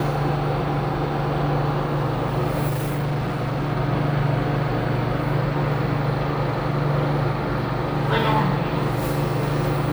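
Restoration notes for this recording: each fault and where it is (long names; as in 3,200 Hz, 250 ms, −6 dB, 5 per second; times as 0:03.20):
0:02.67–0:03.73: clipping −20.5 dBFS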